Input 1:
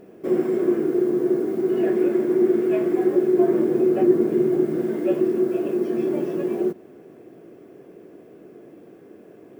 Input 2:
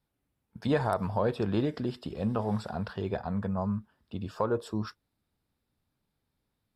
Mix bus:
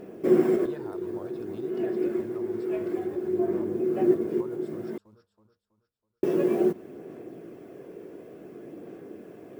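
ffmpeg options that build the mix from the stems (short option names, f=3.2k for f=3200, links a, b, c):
-filter_complex "[0:a]volume=1.5dB,asplit=3[a][b][c];[a]atrim=end=4.98,asetpts=PTS-STARTPTS,afade=t=out:st=4.976:d=0.004:c=hsin[d];[b]atrim=start=4.98:end=6.23,asetpts=PTS-STARTPTS,volume=0[e];[c]atrim=start=6.23,asetpts=PTS-STARTPTS,afade=t=in:d=0.004:c=hsin[f];[d][e][f]concat=n=3:v=0:a=1[g];[1:a]acrusher=bits=7:mode=log:mix=0:aa=0.000001,volume=-16.5dB,asplit=3[h][i][j];[i]volume=-11dB[k];[j]apad=whole_len=423196[l];[g][l]sidechaincompress=threshold=-56dB:ratio=4:attack=5.3:release=557[m];[k]aecho=0:1:325|650|975|1300|1625|1950:1|0.41|0.168|0.0689|0.0283|0.0116[n];[m][h][n]amix=inputs=3:normalize=0,aphaser=in_gain=1:out_gain=1:delay=2.2:decay=0.21:speed=0.56:type=sinusoidal"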